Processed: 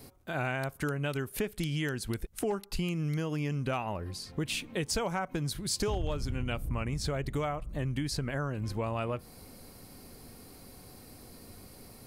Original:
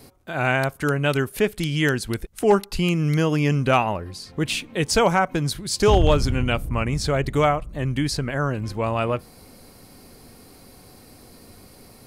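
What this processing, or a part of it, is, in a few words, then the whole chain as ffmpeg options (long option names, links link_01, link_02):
ASMR close-microphone chain: -af "lowshelf=frequency=200:gain=3,acompressor=threshold=-24dB:ratio=6,highshelf=frequency=12000:gain=6,volume=-5dB"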